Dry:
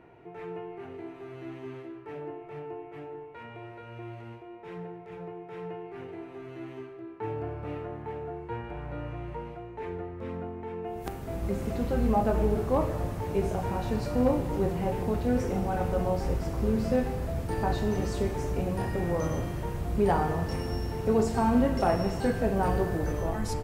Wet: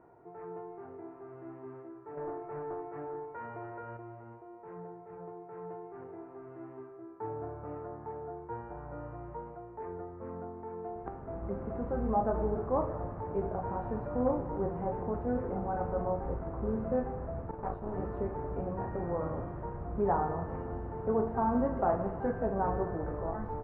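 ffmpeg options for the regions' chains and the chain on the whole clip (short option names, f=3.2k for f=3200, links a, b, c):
-filter_complex "[0:a]asettb=1/sr,asplit=3[a][b][c];[a]atrim=end=2.174[d];[b]atrim=start=2.17:end=3.97,asetpts=PTS-STARTPTS,afade=t=in:d=0.004:c=qsin,afade=t=out:st=1.796:d=0.004:c=qsin,equalizer=f=1.7k:t=o:w=0.84:g=4,acontrast=45,aeval=exprs='clip(val(0),-1,0.0282)':c=same[e];[c]atrim=start=3.966[f];[d][e]acrossfade=d=0.004:c1=hsin:c2=qsin[g];[g][f]acrossfade=d=0.004:c1=qsin:c2=hsin,asettb=1/sr,asplit=3[h][i][j];[h]atrim=end=17.514[k];[i]atrim=start=17.51:end=17.94,asetpts=PTS-STARTPTS,afade=t=in:d=0.004:c=qsin,afade=t=out:st=0.426:d=0.004:c=qsin,agate=range=-33dB:threshold=-26dB:ratio=3:release=100:detection=peak,bandreject=f=1.8k:w=6,aeval=exprs='clip(val(0),-1,0.0168)':c=same[l];[j]atrim=start=17.936[m];[k][l]acrossfade=d=0.004:c1=hsin:c2=qsin[n];[n][m]acrossfade=d=0.004:c1=qsin:c2=hsin,lowpass=f=1.3k:w=0.5412,lowpass=f=1.3k:w=1.3066,lowshelf=f=470:g=-8.5"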